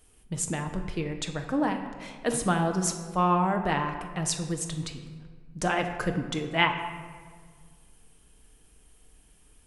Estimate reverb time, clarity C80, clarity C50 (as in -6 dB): 1.7 s, 9.5 dB, 8.0 dB